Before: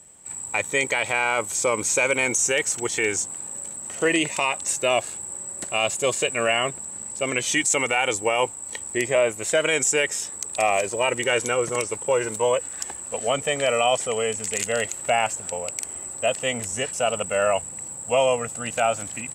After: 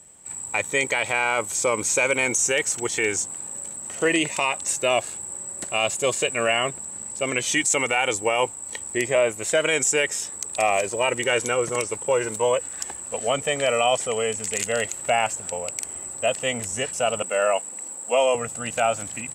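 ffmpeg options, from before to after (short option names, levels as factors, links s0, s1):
-filter_complex "[0:a]asettb=1/sr,asplit=3[s0][s1][s2];[s0]atrim=end=17.224[s3];[s1]atrim=start=17.22:end=18.35,asetpts=PTS-STARTPTS,afade=t=in:d=0.004:c=qsin,afade=t=out:st=1.126:d=0.004:c=qsin,highpass=f=230:w=0.5412,highpass=f=230:w=1.3066[s4];[s2]atrim=start=18.346[s5];[s3][s4]acrossfade=d=0.004:c1=hsin:c2=qsin[s6];[s6][s5]acrossfade=d=0.004:c1=qsin:c2=hsin"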